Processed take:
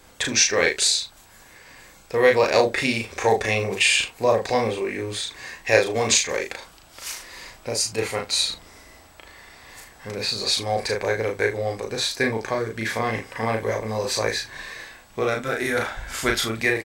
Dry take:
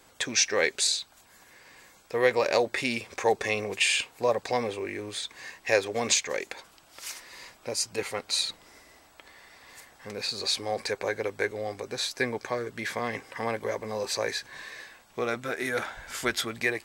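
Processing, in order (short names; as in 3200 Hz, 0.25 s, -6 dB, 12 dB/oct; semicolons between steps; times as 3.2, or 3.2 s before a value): low shelf 98 Hz +11.5 dB; early reflections 36 ms -3 dB, 75 ms -16 dB; gain +4 dB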